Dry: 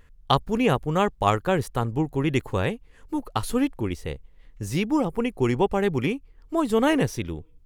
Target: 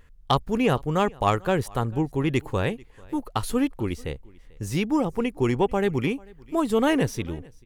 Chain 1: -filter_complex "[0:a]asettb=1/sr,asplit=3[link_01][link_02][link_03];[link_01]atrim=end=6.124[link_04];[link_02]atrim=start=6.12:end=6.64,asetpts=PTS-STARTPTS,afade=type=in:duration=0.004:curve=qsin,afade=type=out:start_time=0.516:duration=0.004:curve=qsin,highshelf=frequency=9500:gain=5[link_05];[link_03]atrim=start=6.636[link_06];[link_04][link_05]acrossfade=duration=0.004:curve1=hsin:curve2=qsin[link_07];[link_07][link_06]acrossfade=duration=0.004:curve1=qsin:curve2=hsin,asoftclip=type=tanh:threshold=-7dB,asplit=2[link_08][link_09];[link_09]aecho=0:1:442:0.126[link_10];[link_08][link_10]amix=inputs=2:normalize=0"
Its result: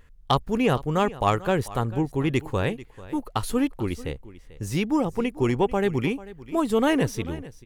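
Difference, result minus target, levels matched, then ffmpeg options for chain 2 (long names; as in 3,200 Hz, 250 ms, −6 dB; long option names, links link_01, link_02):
echo-to-direct +7 dB
-filter_complex "[0:a]asettb=1/sr,asplit=3[link_01][link_02][link_03];[link_01]atrim=end=6.124[link_04];[link_02]atrim=start=6.12:end=6.64,asetpts=PTS-STARTPTS,afade=type=in:duration=0.004:curve=qsin,afade=type=out:start_time=0.516:duration=0.004:curve=qsin,highshelf=frequency=9500:gain=5[link_05];[link_03]atrim=start=6.636[link_06];[link_04][link_05]acrossfade=duration=0.004:curve1=hsin:curve2=qsin[link_07];[link_07][link_06]acrossfade=duration=0.004:curve1=qsin:curve2=hsin,asoftclip=type=tanh:threshold=-7dB,asplit=2[link_08][link_09];[link_09]aecho=0:1:442:0.0562[link_10];[link_08][link_10]amix=inputs=2:normalize=0"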